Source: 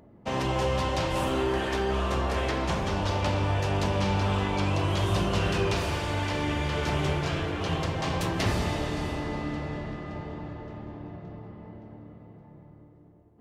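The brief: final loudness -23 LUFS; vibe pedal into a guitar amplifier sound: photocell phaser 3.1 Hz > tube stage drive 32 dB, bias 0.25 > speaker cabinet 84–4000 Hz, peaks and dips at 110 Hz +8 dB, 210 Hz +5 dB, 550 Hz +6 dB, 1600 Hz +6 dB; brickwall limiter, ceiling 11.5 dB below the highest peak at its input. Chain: limiter -25.5 dBFS; photocell phaser 3.1 Hz; tube stage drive 32 dB, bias 0.25; speaker cabinet 84–4000 Hz, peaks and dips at 110 Hz +8 dB, 210 Hz +5 dB, 550 Hz +6 dB, 1600 Hz +6 dB; gain +15 dB

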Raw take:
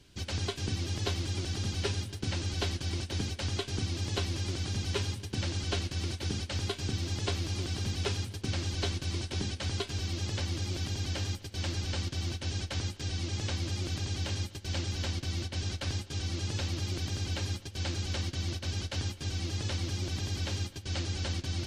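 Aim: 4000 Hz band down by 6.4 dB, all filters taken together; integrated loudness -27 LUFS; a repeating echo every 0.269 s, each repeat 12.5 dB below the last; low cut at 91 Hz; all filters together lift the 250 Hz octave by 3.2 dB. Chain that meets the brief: HPF 91 Hz; bell 250 Hz +4.5 dB; bell 4000 Hz -8.5 dB; feedback echo 0.269 s, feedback 24%, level -12.5 dB; gain +9 dB

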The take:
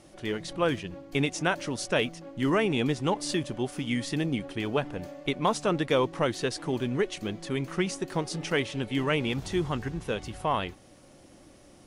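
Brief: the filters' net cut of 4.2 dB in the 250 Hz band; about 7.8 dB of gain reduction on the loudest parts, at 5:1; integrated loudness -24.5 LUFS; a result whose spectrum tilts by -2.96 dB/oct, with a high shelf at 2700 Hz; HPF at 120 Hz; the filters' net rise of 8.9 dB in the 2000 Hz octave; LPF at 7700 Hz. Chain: HPF 120 Hz; LPF 7700 Hz; bell 250 Hz -5.5 dB; bell 2000 Hz +7.5 dB; high shelf 2700 Hz +8.5 dB; compressor 5:1, threshold -26 dBFS; gain +6.5 dB

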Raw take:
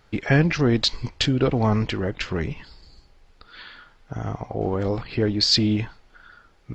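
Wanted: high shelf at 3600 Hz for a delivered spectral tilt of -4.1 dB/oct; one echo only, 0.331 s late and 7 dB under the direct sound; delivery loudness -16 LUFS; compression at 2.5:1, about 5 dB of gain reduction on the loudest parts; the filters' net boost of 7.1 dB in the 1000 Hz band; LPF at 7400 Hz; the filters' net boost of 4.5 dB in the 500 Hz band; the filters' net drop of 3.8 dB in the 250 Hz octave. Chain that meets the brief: LPF 7400 Hz; bell 250 Hz -8 dB; bell 500 Hz +6.5 dB; bell 1000 Hz +8 dB; high shelf 3600 Hz -6 dB; compressor 2.5:1, threshold -20 dBFS; echo 0.331 s -7 dB; gain +9 dB

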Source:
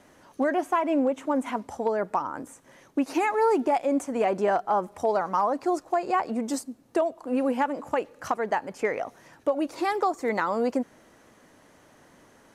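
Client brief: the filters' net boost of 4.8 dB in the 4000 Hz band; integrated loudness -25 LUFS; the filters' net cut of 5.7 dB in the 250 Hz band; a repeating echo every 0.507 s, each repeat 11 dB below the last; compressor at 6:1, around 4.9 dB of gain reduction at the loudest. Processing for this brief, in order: bell 250 Hz -7 dB; bell 4000 Hz +6.5 dB; compressor 6:1, threshold -25 dBFS; feedback echo 0.507 s, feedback 28%, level -11 dB; gain +6.5 dB

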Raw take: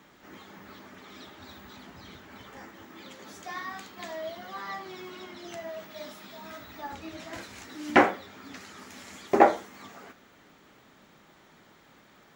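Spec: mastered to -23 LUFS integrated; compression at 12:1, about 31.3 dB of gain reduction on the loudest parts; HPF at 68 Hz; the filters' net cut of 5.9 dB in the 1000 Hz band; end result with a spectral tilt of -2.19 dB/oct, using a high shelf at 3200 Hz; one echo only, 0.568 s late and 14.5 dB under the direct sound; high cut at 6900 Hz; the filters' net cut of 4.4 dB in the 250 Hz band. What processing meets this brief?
HPF 68 Hz; LPF 6900 Hz; bell 250 Hz -5.5 dB; bell 1000 Hz -9 dB; high shelf 3200 Hz +8.5 dB; compressor 12:1, threshold -49 dBFS; echo 0.568 s -14.5 dB; gain +29 dB

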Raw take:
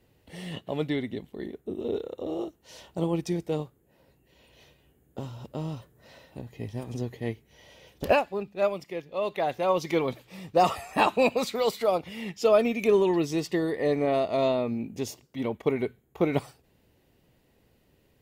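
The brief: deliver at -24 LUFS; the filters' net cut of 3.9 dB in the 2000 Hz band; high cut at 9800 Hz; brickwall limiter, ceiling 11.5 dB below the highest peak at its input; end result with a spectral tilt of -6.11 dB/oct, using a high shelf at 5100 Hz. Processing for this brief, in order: LPF 9800 Hz; bell 2000 Hz -3.5 dB; high shelf 5100 Hz -8 dB; gain +9 dB; limiter -13 dBFS

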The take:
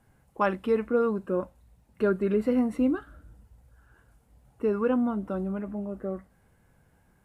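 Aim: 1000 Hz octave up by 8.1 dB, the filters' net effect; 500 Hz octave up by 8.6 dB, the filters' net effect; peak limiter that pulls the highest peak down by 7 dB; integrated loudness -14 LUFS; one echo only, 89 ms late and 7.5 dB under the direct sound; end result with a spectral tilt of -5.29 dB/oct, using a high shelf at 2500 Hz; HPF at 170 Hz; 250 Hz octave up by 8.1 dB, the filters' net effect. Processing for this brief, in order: HPF 170 Hz; bell 250 Hz +8.5 dB; bell 500 Hz +6 dB; bell 1000 Hz +7 dB; high shelf 2500 Hz +6 dB; limiter -11 dBFS; echo 89 ms -7.5 dB; gain +7 dB

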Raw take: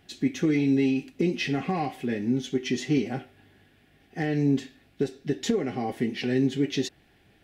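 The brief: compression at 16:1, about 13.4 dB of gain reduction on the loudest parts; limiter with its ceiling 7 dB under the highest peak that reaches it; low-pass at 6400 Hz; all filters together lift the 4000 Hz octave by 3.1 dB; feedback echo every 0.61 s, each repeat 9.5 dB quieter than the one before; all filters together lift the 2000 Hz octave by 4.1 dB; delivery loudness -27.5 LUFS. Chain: LPF 6400 Hz; bell 2000 Hz +4 dB; bell 4000 Hz +3 dB; compressor 16:1, threshold -32 dBFS; limiter -29 dBFS; feedback echo 0.61 s, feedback 33%, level -9.5 dB; gain +11.5 dB

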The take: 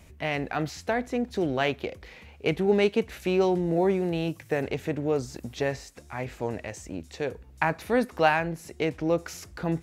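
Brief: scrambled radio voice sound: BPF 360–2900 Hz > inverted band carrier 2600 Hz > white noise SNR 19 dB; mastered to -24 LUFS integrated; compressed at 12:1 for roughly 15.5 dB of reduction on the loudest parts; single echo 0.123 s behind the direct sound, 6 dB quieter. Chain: compressor 12:1, threshold -33 dBFS; BPF 360–2900 Hz; echo 0.123 s -6 dB; inverted band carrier 2600 Hz; white noise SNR 19 dB; gain +14.5 dB

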